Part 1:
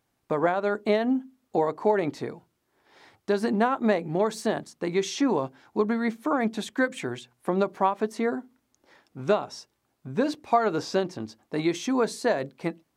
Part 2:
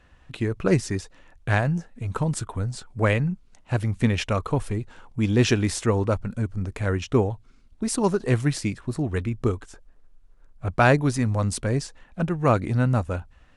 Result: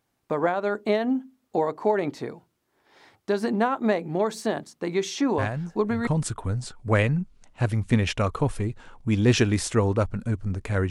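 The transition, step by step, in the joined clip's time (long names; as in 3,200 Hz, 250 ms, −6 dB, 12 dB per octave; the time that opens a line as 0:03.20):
part 1
0:05.38: mix in part 2 from 0:01.49 0.69 s −7 dB
0:06.07: continue with part 2 from 0:02.18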